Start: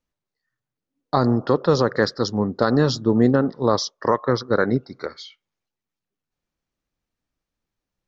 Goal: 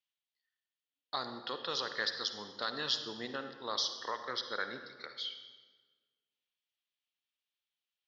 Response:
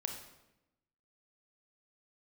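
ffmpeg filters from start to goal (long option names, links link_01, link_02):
-filter_complex "[0:a]bandpass=frequency=3200:width_type=q:width=3.5:csg=0,asplit=2[link_01][link_02];[1:a]atrim=start_sample=2205,asetrate=26460,aresample=44100[link_03];[link_02][link_03]afir=irnorm=-1:irlink=0,volume=-1dB[link_04];[link_01][link_04]amix=inputs=2:normalize=0,volume=-2.5dB"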